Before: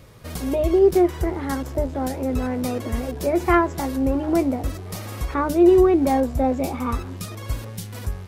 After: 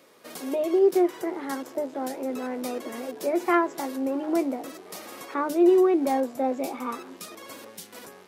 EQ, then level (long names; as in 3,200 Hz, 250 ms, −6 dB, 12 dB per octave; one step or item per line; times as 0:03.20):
high-pass filter 260 Hz 24 dB per octave
−4.0 dB